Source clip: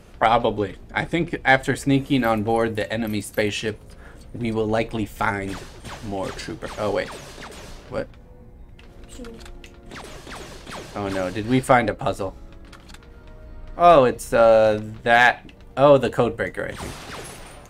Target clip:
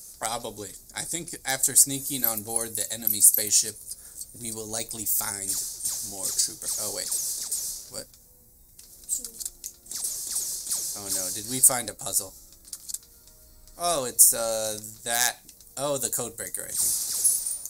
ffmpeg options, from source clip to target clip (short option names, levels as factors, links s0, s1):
-af "aexciter=amount=14.4:drive=7.8:freq=4600,highshelf=f=4300:g=10,volume=0.168"